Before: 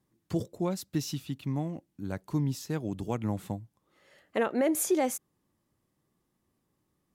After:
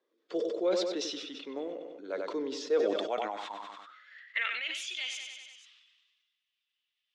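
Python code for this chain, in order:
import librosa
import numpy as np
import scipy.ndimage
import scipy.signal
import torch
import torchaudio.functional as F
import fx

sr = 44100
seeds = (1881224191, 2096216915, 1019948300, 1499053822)

y = fx.spec_quant(x, sr, step_db=15)
y = fx.cabinet(y, sr, low_hz=230.0, low_slope=24, high_hz=5500.0, hz=(830.0, 1400.0, 2200.0, 3500.0), db=(-6, 5, 3, 8))
y = fx.echo_feedback(y, sr, ms=96, feedback_pct=51, wet_db=-12.0)
y = fx.filter_sweep_highpass(y, sr, from_hz=470.0, to_hz=2800.0, start_s=2.78, end_s=4.71, q=5.4)
y = fx.sustainer(y, sr, db_per_s=36.0)
y = y * 10.0 ** (-3.5 / 20.0)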